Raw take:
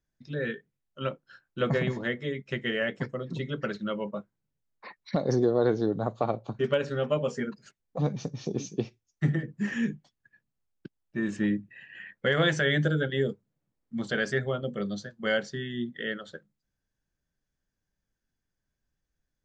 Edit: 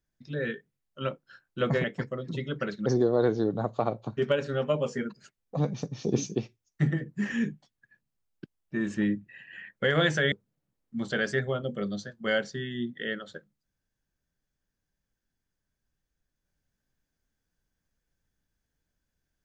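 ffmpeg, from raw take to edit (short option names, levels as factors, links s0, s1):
-filter_complex "[0:a]asplit=6[s0][s1][s2][s3][s4][s5];[s0]atrim=end=1.842[s6];[s1]atrim=start=2.858:end=3.882[s7];[s2]atrim=start=5.278:end=8.492[s8];[s3]atrim=start=8.488:end=8.772,asetpts=PTS-STARTPTS,volume=1.88[s9];[s4]atrim=start=8.768:end=12.742[s10];[s5]atrim=start=13.308[s11];[s6][s7]acrossfade=d=0.004:c1=hsin:c2=hsin[s12];[s12][s8]acrossfade=d=0.004:c1=hsin:c2=hsin[s13];[s13][s9]acrossfade=d=0.004:c1=hsin:c2=hsin[s14];[s14][s10]acrossfade=d=0.004:c1=hsin:c2=hsin[s15];[s15][s11]acrossfade=d=0.004:c1=hsin:c2=hsin"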